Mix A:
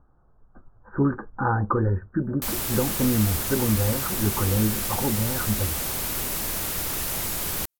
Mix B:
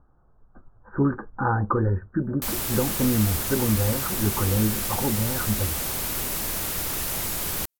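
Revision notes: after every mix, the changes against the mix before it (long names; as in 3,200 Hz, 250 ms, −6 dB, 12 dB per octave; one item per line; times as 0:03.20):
nothing changed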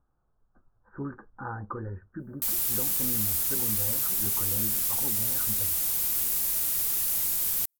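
master: add first-order pre-emphasis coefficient 0.8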